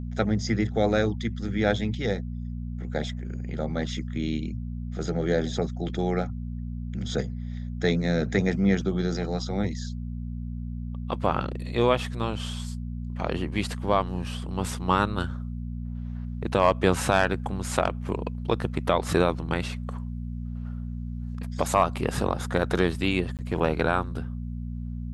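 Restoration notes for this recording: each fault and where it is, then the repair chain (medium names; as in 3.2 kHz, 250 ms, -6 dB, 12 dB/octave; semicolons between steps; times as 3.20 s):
hum 60 Hz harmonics 4 -33 dBFS
23.37–23.39 s: dropout 18 ms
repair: de-hum 60 Hz, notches 4; interpolate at 23.37 s, 18 ms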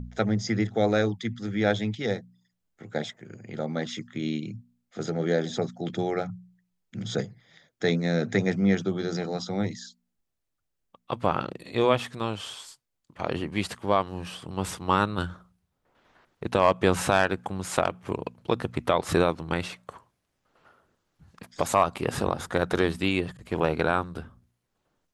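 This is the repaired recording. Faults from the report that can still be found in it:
nothing left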